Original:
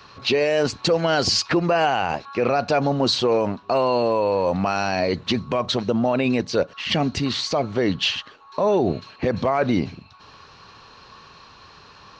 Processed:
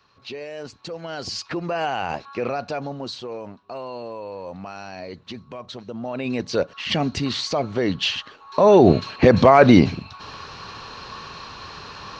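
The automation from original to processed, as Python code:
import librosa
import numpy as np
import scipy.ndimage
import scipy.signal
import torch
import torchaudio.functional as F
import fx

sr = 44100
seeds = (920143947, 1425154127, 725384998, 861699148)

y = fx.gain(x, sr, db=fx.line((0.88, -14.5), (2.19, -2.0), (3.2, -13.5), (5.86, -13.5), (6.52, -1.0), (8.09, -1.0), (8.92, 9.0)))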